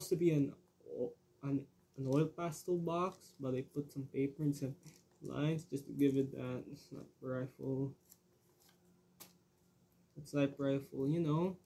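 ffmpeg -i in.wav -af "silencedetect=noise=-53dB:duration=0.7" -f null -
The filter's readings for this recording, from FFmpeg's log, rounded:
silence_start: 9.27
silence_end: 10.17 | silence_duration: 0.90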